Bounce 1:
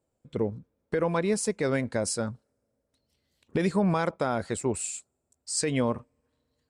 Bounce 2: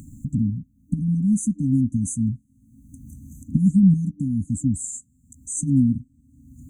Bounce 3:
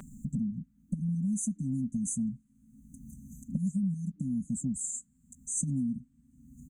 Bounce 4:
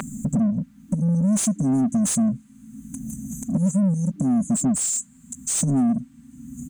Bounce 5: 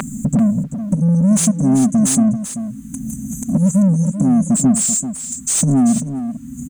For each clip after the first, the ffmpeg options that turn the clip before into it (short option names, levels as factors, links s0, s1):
-af "acompressor=mode=upward:threshold=0.0447:ratio=2.5,tiltshelf=f=1200:g=5,afftfilt=real='re*(1-between(b*sr/4096,300,6000))':imag='im*(1-between(b*sr/4096,300,6000))':win_size=4096:overlap=0.75,volume=2.11"
-filter_complex "[0:a]equalizer=f=1400:t=o:w=2.4:g=14,aecho=1:1:5.1:0.83,acrossover=split=690[s0][s1];[s0]acompressor=threshold=0.0891:ratio=6[s2];[s2][s1]amix=inputs=2:normalize=0,volume=0.398"
-filter_complex "[0:a]asplit=2[s0][s1];[s1]highpass=f=720:p=1,volume=14.1,asoftclip=type=tanh:threshold=0.119[s2];[s0][s2]amix=inputs=2:normalize=0,lowpass=f=3600:p=1,volume=0.501,asplit=2[s3][s4];[s4]asoftclip=type=tanh:threshold=0.02,volume=0.562[s5];[s3][s5]amix=inputs=2:normalize=0,volume=2"
-af "aecho=1:1:388:0.299,volume=2.11"